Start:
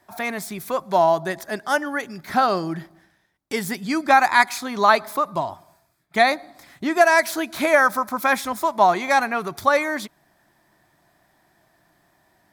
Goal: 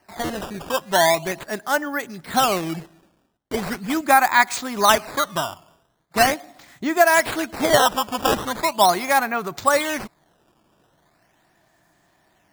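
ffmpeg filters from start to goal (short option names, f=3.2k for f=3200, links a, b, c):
-af "equalizer=f=6.9k:t=o:w=0.26:g=9,acrusher=samples=12:mix=1:aa=0.000001:lfo=1:lforange=19.2:lforate=0.4"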